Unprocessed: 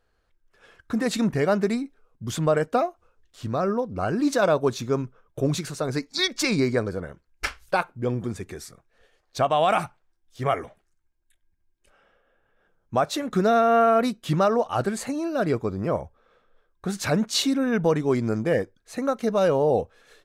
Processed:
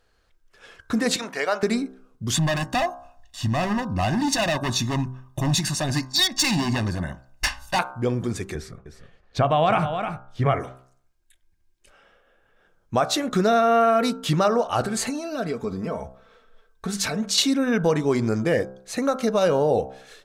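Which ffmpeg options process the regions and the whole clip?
-filter_complex "[0:a]asettb=1/sr,asplit=3[a][b][c];[a]atrim=end=1.164[d];[b]atrim=start=1.16:end=1.63,asetpts=PTS-STARTPTS,afade=t=in:d=0.004:c=qsin,afade=t=out:st=0.466:d=0.004:c=qsin,highpass=690,equalizer=f=11k:w=0.58:g=-5[e];[c]atrim=start=1.626[f];[d][e]acrossfade=d=0.004:c1=hsin:c2=qsin[g];[g][f]acrossfade=d=0.004:c1=qsin:c2=hsin,asettb=1/sr,asplit=3[h][i][j];[h]atrim=end=2.344[k];[i]atrim=start=2.34:end=7.79,asetpts=PTS-STARTPTS,afade=t=in:d=0.004:c=qsin,afade=t=out:st=5.446:d=0.004:c=qsin,volume=24dB,asoftclip=hard,volume=-24dB,aecho=1:1:1.1:1,atrim=end_sample=240345[l];[j]atrim=start=7.786[m];[k][l]acrossfade=d=0.004:c1=hsin:c2=qsin[n];[n][m]acrossfade=d=0.004:c1=qsin:c2=hsin,asettb=1/sr,asplit=3[o][p][q];[o]atrim=end=8.554[r];[p]atrim=start=8.55:end=10.6,asetpts=PTS-STARTPTS,afade=t=in:d=0.004:c=qsin,afade=t=out:st=2.046:d=0.004:c=qsin,bass=f=250:g=9,treble=f=4k:g=-15,aecho=1:1:307:0.282,atrim=end_sample=90405[s];[q]atrim=start=10.596[t];[r][s]acrossfade=d=0.004:c1=hsin:c2=qsin[u];[u][t]acrossfade=d=0.004:c1=qsin:c2=hsin,asettb=1/sr,asplit=3[v][w][x];[v]atrim=end=14.814[y];[w]atrim=start=14.81:end=17.38,asetpts=PTS-STARTPTS,afade=t=in:d=0.004:c=qsin,afade=t=out:st=2.566:d=0.004:c=qsin,acompressor=threshold=-29dB:ratio=6:attack=3.2:release=140:knee=1:detection=peak,aecho=1:1:4.5:0.58,atrim=end_sample=113337[z];[x]atrim=start=17.376[aa];[y][z]acrossfade=d=0.004:c1=hsin:c2=qsin[ab];[ab][aa]acrossfade=d=0.004:c1=qsin:c2=hsin,equalizer=f=5.3k:t=o:w=2.3:g=5,bandreject=f=64.64:t=h:w=4,bandreject=f=129.28:t=h:w=4,bandreject=f=193.92:t=h:w=4,bandreject=f=258.56:t=h:w=4,bandreject=f=323.2:t=h:w=4,bandreject=f=387.84:t=h:w=4,bandreject=f=452.48:t=h:w=4,bandreject=f=517.12:t=h:w=4,bandreject=f=581.76:t=h:w=4,bandreject=f=646.4:t=h:w=4,bandreject=f=711.04:t=h:w=4,bandreject=f=775.68:t=h:w=4,bandreject=f=840.32:t=h:w=4,bandreject=f=904.96:t=h:w=4,bandreject=f=969.6:t=h:w=4,bandreject=f=1.03424k:t=h:w=4,bandreject=f=1.09888k:t=h:w=4,bandreject=f=1.16352k:t=h:w=4,bandreject=f=1.22816k:t=h:w=4,bandreject=f=1.2928k:t=h:w=4,bandreject=f=1.35744k:t=h:w=4,bandreject=f=1.42208k:t=h:w=4,bandreject=f=1.48672k:t=h:w=4,bandreject=f=1.55136k:t=h:w=4,bandreject=f=1.616k:t=h:w=4,acompressor=threshold=-27dB:ratio=1.5,volume=4.5dB"

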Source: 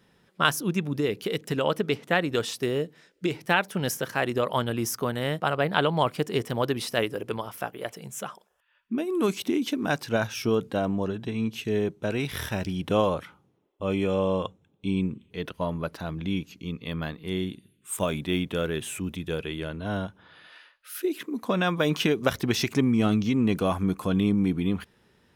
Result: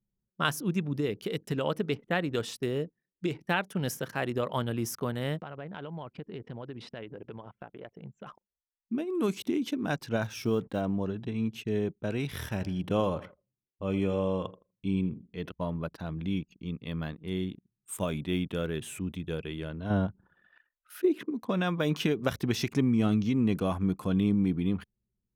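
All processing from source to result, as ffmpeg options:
-filter_complex "[0:a]asettb=1/sr,asplit=3[a][b][c];[a]atrim=end=5.424[d];[b]atrim=start=5.42:end=8.27,asetpts=PTS-STARTPTS,afade=t=in:d=0.004:c=qsin,afade=t=out:st=2.846:d=0.004:c=qsin,lowpass=3.4k,bandreject=f=1.2k:w=16,acompressor=threshold=-36dB:ratio=3:attack=3.2:release=140:knee=1:detection=peak[e];[c]atrim=start=8.266[f];[d][e]acrossfade=d=0.004:c1=hsin:c2=qsin[g];[g][f]acrossfade=d=0.004:c1=qsin:c2=hsin,asettb=1/sr,asplit=3[h][i][j];[h]atrim=end=10.224[k];[i]atrim=start=10.22:end=10.81,asetpts=PTS-STARTPTS,afade=t=in:d=0.004:c=qsin,afade=t=out:st=0.586:d=0.004:c=qsin,bandreject=f=2.9k:w=29,acrusher=bits=7:mix=0:aa=0.5[l];[j]atrim=start=10.806[m];[k][l]acrossfade=d=0.004:c1=hsin:c2=qsin[n];[n][m]acrossfade=d=0.004:c1=qsin:c2=hsin,asettb=1/sr,asplit=3[o][p][q];[o]atrim=end=12.434[r];[p]atrim=start=12.43:end=15.54,asetpts=PTS-STARTPTS,afade=t=in:d=0.004:c=qsin,afade=t=out:st=3.106:d=0.004:c=qsin,bandreject=f=3.7k:w=13,aecho=1:1:82|164|246|328:0.15|0.0703|0.0331|0.0155,atrim=end_sample=137151[s];[q]atrim=start=15.536[t];[r][s]acrossfade=d=0.004:c1=hsin:c2=qsin[u];[u][t]acrossfade=d=0.004:c1=qsin:c2=hsin,asettb=1/sr,asplit=3[v][w][x];[v]atrim=end=19.904[y];[w]atrim=start=19.9:end=21.31,asetpts=PTS-STARTPTS,afade=t=in:d=0.004:c=qsin,afade=t=out:st=1.406:d=0.004:c=qsin,highshelf=f=2.3k:g=-11,acontrast=72[z];[x]atrim=start=21.306[aa];[y][z]acrossfade=d=0.004:c1=hsin:c2=qsin[ab];[ab][aa]acrossfade=d=0.004:c1=qsin:c2=hsin,anlmdn=0.1,equalizer=f=130:w=0.45:g=5,volume=-6.5dB"

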